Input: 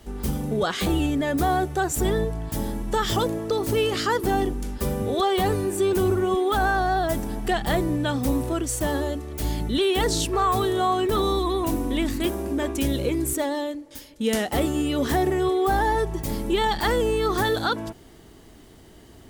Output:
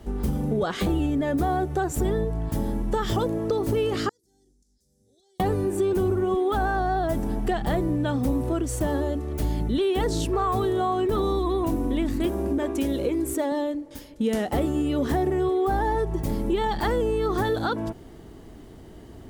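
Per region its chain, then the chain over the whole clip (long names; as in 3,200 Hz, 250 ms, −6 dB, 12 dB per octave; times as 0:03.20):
0:04.09–0:05.40: inverse Chebyshev high-pass filter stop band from 2,900 Hz + downward compressor 2.5 to 1, threshold −49 dBFS + head-to-tape spacing loss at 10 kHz 21 dB
0:12.58–0:13.52: high-pass filter 100 Hz + parametric band 150 Hz −12 dB 0.62 octaves
whole clip: tilt shelving filter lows +5 dB, about 1,400 Hz; downward compressor 2.5 to 1, threshold −23 dBFS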